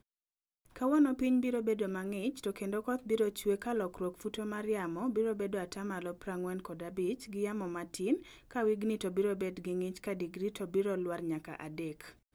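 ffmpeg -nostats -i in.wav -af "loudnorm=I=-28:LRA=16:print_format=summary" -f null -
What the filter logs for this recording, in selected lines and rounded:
Input Integrated:    -35.8 LUFS
Input True Peak:     -18.8 dBTP
Input LRA:             4.1 LU
Input Threshold:     -45.9 LUFS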